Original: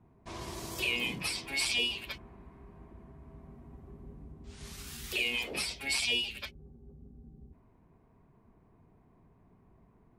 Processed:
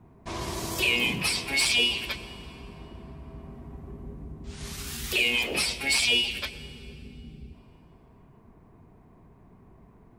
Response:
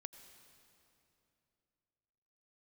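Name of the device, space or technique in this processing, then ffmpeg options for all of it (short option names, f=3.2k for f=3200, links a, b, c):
saturated reverb return: -filter_complex "[0:a]asplit=2[a][b];[1:a]atrim=start_sample=2205[c];[b][c]afir=irnorm=-1:irlink=0,asoftclip=type=tanh:threshold=-32dB,volume=6.5dB[d];[a][d]amix=inputs=2:normalize=0,volume=2dB"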